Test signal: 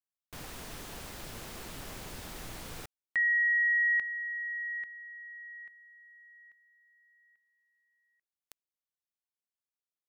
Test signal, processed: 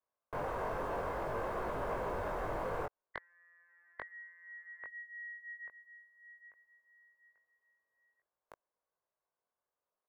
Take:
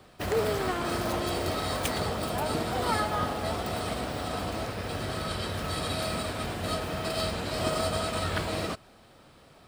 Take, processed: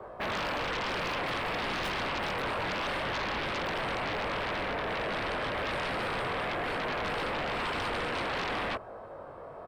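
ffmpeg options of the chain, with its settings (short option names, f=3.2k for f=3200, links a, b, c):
-filter_complex "[0:a]afftfilt=real='re*lt(hypot(re,im),0.112)':imag='im*lt(hypot(re,im),0.112)':win_size=1024:overlap=0.75,acrossover=split=420 2100:gain=0.2 1 0.2[a][b][c];[a][b][c]amix=inputs=3:normalize=0,aecho=1:1:1.9:0.3,flanger=delay=19:depth=2.3:speed=0.57,acrossover=split=1300[d][e];[d]aeval=exprs='0.0316*sin(PI/2*5.62*val(0)/0.0316)':c=same[f];[f][e]amix=inputs=2:normalize=0"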